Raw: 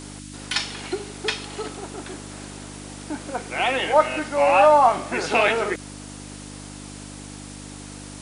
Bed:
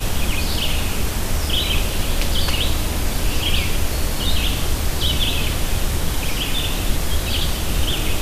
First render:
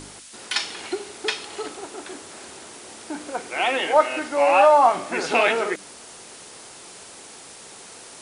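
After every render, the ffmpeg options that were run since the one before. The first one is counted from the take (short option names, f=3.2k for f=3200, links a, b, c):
-af "bandreject=f=50:t=h:w=4,bandreject=f=100:t=h:w=4,bandreject=f=150:t=h:w=4,bandreject=f=200:t=h:w=4,bandreject=f=250:t=h:w=4,bandreject=f=300:t=h:w=4"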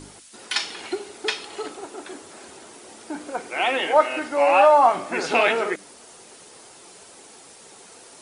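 -af "afftdn=nr=6:nf=-43"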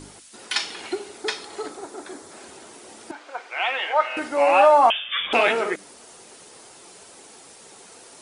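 -filter_complex "[0:a]asettb=1/sr,asplit=3[a][b][c];[a]atrim=end=1.224[d];[b]atrim=start=1.22:end=2.32,asetpts=PTS-STARTPTS,afade=t=in:d=0.004:c=qsin,afade=t=out:st=1.096:d=0.004:c=qsin,equalizer=f=2.8k:t=o:w=0.42:g=-8[e];[c]atrim=start=2.316[f];[d][e]acrossfade=d=0.004:c1=hsin:c2=qsin[g];[g][f]acrossfade=d=0.004:c1=qsin:c2=hsin,asettb=1/sr,asplit=3[h][i][j];[h]atrim=end=3.114[k];[i]atrim=start=3.11:end=4.17,asetpts=PTS-STARTPTS,afade=t=in:d=0.004:c=qsin,afade=t=out:st=1.056:d=0.004:c=qsin,highpass=800,lowpass=4.2k[l];[j]atrim=start=4.166[m];[k][l]acrossfade=d=0.004:c1=hsin:c2=qsin[n];[n][m]acrossfade=d=0.004:c1=qsin:c2=hsin,asettb=1/sr,asplit=3[o][p][q];[o]atrim=end=4.904[r];[p]atrim=start=4.9:end=5.33,asetpts=PTS-STARTPTS,afade=t=in:d=0.004:c=qsin,afade=t=out:st=0.426:d=0.004:c=qsin,lowpass=f=3.2k:t=q:w=0.5098,lowpass=f=3.2k:t=q:w=0.6013,lowpass=f=3.2k:t=q:w=0.9,lowpass=f=3.2k:t=q:w=2.563,afreqshift=-3800[s];[q]atrim=start=5.326[t];[r][s]acrossfade=d=0.004:c1=hsin:c2=qsin[u];[u][t]acrossfade=d=0.004:c1=qsin:c2=hsin"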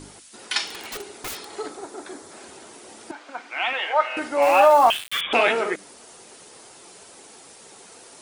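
-filter_complex "[0:a]asettb=1/sr,asplit=3[a][b][c];[a]atrim=end=0.674[d];[b]atrim=start=0.67:end=1.5,asetpts=PTS-STARTPTS,afade=t=in:d=0.004:c=qsin,afade=t=out:st=0.826:d=0.004:c=qsin,aeval=exprs='(mod(22.4*val(0)+1,2)-1)/22.4':c=same[e];[c]atrim=start=1.496[f];[d][e]acrossfade=d=0.004:c1=hsin:c2=qsin[g];[g][f]acrossfade=d=0.004:c1=qsin:c2=hsin,asettb=1/sr,asplit=3[h][i][j];[h]atrim=end=3.294[k];[i]atrim=start=3.29:end=3.73,asetpts=PTS-STARTPTS,afade=t=in:d=0.004:c=qsin,afade=t=out:st=0.436:d=0.004:c=qsin,lowshelf=f=340:t=q:w=3:g=7[l];[j]atrim=start=3.726[m];[k][l]acrossfade=d=0.004:c1=hsin:c2=qsin[n];[n][m]acrossfade=d=0.004:c1=qsin:c2=hsin,asettb=1/sr,asplit=3[o][p][q];[o]atrim=end=4.424[r];[p]atrim=start=4.42:end=5.21,asetpts=PTS-STARTPTS,afade=t=in:d=0.004:c=qsin,afade=t=out:st=0.786:d=0.004:c=qsin,aeval=exprs='val(0)*gte(abs(val(0)),0.0422)':c=same[s];[q]atrim=start=5.206[t];[r][s]acrossfade=d=0.004:c1=hsin:c2=qsin[u];[u][t]acrossfade=d=0.004:c1=qsin:c2=hsin"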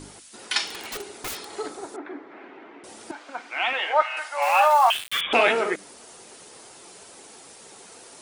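-filter_complex "[0:a]asettb=1/sr,asplit=3[a][b][c];[a]atrim=end=1.964[d];[b]atrim=start=1.96:end=2.84,asetpts=PTS-STARTPTS,afade=t=in:d=0.004:c=qsin,afade=t=out:st=0.876:d=0.004:c=qsin,highpass=260,equalizer=f=290:t=q:w=4:g=8,equalizer=f=550:t=q:w=4:g=-3,equalizer=f=2.1k:t=q:w=4:g=4,lowpass=f=2.5k:w=0.5412,lowpass=f=2.5k:w=1.3066[e];[c]atrim=start=2.836[f];[d][e]acrossfade=d=0.004:c1=hsin:c2=qsin[g];[g][f]acrossfade=d=0.004:c1=qsin:c2=hsin,asettb=1/sr,asplit=3[h][i][j];[h]atrim=end=4.024[k];[i]atrim=start=4.02:end=4.95,asetpts=PTS-STARTPTS,afade=t=in:d=0.004:c=qsin,afade=t=out:st=0.926:d=0.004:c=qsin,highpass=f=740:w=0.5412,highpass=f=740:w=1.3066[l];[j]atrim=start=4.946[m];[k][l]acrossfade=d=0.004:c1=hsin:c2=qsin[n];[n][m]acrossfade=d=0.004:c1=qsin:c2=hsin"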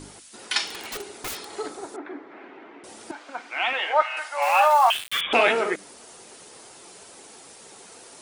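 -af anull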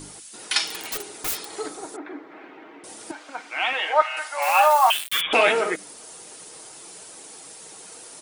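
-af "highshelf=f=7.9k:g=10,aecho=1:1:6.4:0.31"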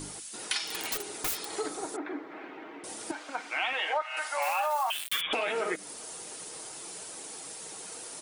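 -af "alimiter=limit=-12dB:level=0:latency=1:release=243,acompressor=threshold=-29dB:ratio=3"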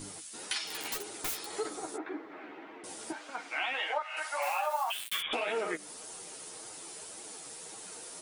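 -af "flanger=delay=8.4:depth=5.6:regen=3:speed=1.8:shape=triangular"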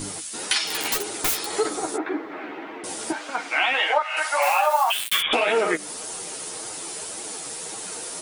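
-af "volume=12dB"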